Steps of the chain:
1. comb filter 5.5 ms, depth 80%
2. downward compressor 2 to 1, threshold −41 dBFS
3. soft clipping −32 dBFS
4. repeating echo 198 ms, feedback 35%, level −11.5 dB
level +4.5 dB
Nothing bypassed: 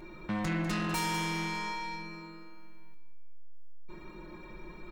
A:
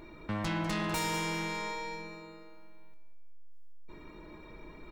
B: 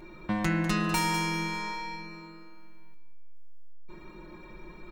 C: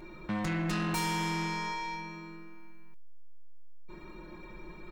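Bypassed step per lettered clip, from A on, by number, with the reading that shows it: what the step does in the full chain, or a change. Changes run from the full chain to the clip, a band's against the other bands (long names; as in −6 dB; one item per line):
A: 1, 500 Hz band +3.5 dB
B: 3, distortion level −10 dB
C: 4, change in crest factor −2.0 dB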